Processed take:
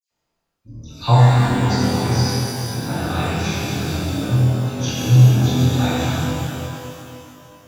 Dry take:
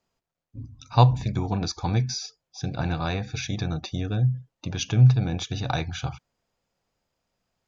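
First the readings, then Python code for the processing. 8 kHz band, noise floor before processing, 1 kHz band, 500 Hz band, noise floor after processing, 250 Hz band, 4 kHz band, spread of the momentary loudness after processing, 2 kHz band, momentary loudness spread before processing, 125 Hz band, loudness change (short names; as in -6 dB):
n/a, -84 dBFS, +6.5 dB, +8.5 dB, -76 dBFS, +9.5 dB, +7.0 dB, 14 LU, +9.5 dB, 16 LU, +7.0 dB, +7.5 dB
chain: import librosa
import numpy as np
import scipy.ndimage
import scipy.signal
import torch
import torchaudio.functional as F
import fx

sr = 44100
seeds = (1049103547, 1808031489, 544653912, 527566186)

y = fx.doubler(x, sr, ms=25.0, db=-3)
y = fx.dispersion(y, sr, late='lows', ms=110.0, hz=2900.0)
y = fx.rev_shimmer(y, sr, seeds[0], rt60_s=2.7, semitones=12, shimmer_db=-8, drr_db=-8.0)
y = F.gain(torch.from_numpy(y), -4.0).numpy()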